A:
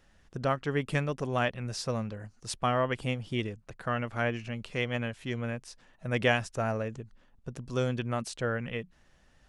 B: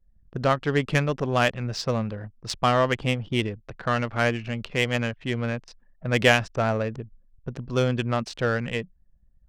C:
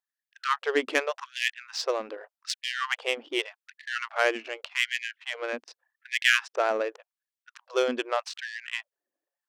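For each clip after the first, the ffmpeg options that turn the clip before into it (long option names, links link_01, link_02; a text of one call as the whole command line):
ffmpeg -i in.wav -af "adynamicsmooth=sensitivity=5:basefreq=2500,equalizer=frequency=5000:width_type=o:width=1.6:gain=6,anlmdn=0.000631,volume=6.5dB" out.wav
ffmpeg -i in.wav -af "afftfilt=real='re*gte(b*sr/1024,250*pow(1700/250,0.5+0.5*sin(2*PI*0.85*pts/sr)))':imag='im*gte(b*sr/1024,250*pow(1700/250,0.5+0.5*sin(2*PI*0.85*pts/sr)))':win_size=1024:overlap=0.75" out.wav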